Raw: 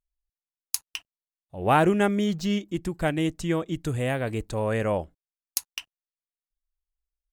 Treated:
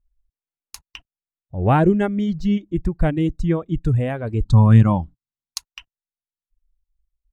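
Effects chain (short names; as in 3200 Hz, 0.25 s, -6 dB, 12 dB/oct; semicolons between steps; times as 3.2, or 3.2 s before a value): RIAA curve playback; reverb removal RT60 1.7 s; 4.45–5.58 graphic EQ 125/250/500/1000/2000/4000/8000 Hz +11/+10/-11/+11/-4/+12/+8 dB; gain +1 dB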